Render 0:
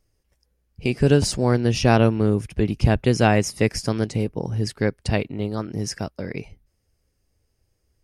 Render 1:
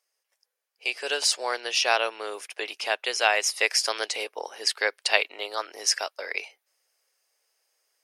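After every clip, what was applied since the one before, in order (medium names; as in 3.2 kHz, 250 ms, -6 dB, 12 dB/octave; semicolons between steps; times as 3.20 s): gain riding within 3 dB 0.5 s; dynamic bell 3.4 kHz, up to +6 dB, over -44 dBFS, Q 1.1; Bessel high-pass 860 Hz, order 6; trim +3 dB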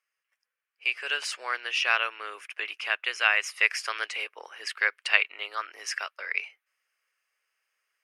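high-order bell 1.8 kHz +13.5 dB; trim -11.5 dB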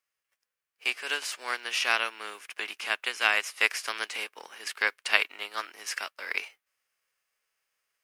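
formants flattened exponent 0.6; trim -1.5 dB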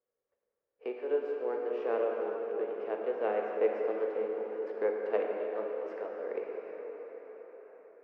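resonant low-pass 470 Hz, resonance Q 5.5; plate-style reverb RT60 4.6 s, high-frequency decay 0.6×, DRR -0.5 dB; tape noise reduction on one side only encoder only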